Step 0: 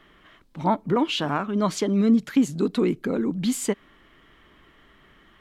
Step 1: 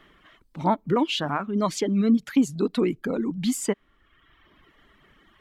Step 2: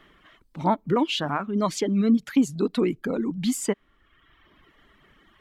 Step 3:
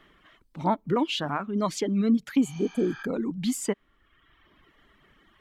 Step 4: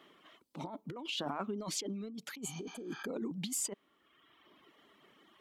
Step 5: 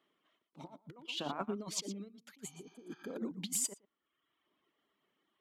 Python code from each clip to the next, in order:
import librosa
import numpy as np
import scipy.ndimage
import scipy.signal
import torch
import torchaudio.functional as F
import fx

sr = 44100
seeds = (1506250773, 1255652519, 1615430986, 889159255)

y1 = fx.dereverb_blind(x, sr, rt60_s=1.1)
y2 = y1
y3 = fx.spec_repair(y2, sr, seeds[0], start_s=2.47, length_s=0.53, low_hz=740.0, high_hz=6600.0, source='both')
y3 = F.gain(torch.from_numpy(y3), -2.5).numpy()
y4 = scipy.signal.sosfilt(scipy.signal.butter(2, 260.0, 'highpass', fs=sr, output='sos'), y3)
y4 = fx.peak_eq(y4, sr, hz=1700.0, db=-8.0, octaves=0.79)
y4 = fx.over_compress(y4, sr, threshold_db=-35.0, ratio=-1.0)
y4 = F.gain(torch.from_numpy(y4), -5.0).numpy()
y5 = y4 + 10.0 ** (-11.5 / 20.0) * np.pad(y4, (int(116 * sr / 1000.0), 0))[:len(y4)]
y5 = fx.upward_expand(y5, sr, threshold_db=-47.0, expansion=2.5)
y5 = F.gain(torch.from_numpy(y5), 2.5).numpy()